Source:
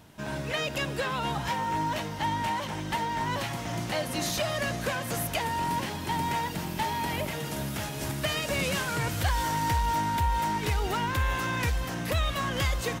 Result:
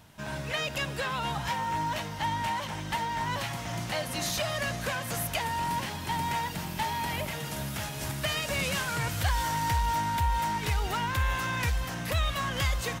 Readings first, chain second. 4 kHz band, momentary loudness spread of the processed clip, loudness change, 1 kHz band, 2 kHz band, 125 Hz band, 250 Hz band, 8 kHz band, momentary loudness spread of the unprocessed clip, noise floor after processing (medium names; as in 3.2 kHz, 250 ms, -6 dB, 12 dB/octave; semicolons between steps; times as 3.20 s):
0.0 dB, 5 LU, -1.0 dB, -1.0 dB, -0.5 dB, -1.0 dB, -4.0 dB, 0.0 dB, 5 LU, -37 dBFS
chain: peaking EQ 340 Hz -6.5 dB 1.4 oct